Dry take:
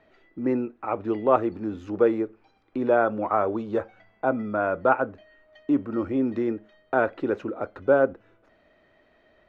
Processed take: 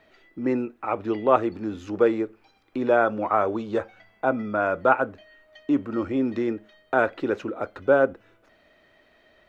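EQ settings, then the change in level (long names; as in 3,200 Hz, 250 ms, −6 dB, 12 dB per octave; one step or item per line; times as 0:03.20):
high-shelf EQ 2,300 Hz +10 dB
0.0 dB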